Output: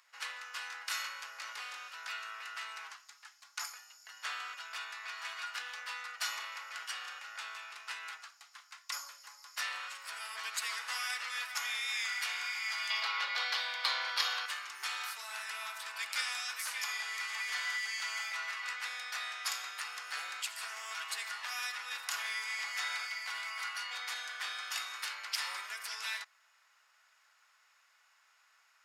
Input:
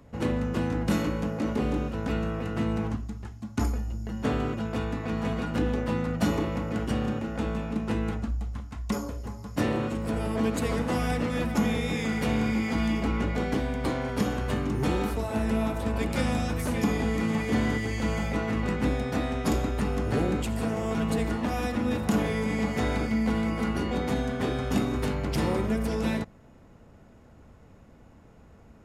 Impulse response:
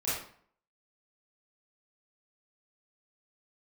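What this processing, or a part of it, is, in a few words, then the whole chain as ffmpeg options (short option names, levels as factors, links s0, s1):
headphones lying on a table: -filter_complex "[0:a]highpass=f=1300:w=0.5412,highpass=f=1300:w=1.3066,equalizer=f=4900:t=o:w=0.56:g=6,asettb=1/sr,asplit=3[s0][s1][s2];[s0]atrim=end=12.904[s3];[s1]atrim=start=12.9:end=14.46,asetpts=PTS-STARTPTS,afade=t=in:d=0.004:c=qsin,afade=t=out:st=1.556:d=0.004:c=qsin,equalizer=f=125:t=o:w=1:g=8,equalizer=f=250:t=o:w=1:g=-7,equalizer=f=500:t=o:w=1:g=11,equalizer=f=1000:t=o:w=1:g=5,equalizer=f=4000:t=o:w=1:g=12,equalizer=f=8000:t=o:w=1:g=-7[s4];[s2]atrim=start=14.456[s5];[s3][s4]acrossfade=d=0.004:c1=hsin:c2=qsin[s6];[s6][s5]acrossfade=d=0.004:c1=qsin:c2=hsin"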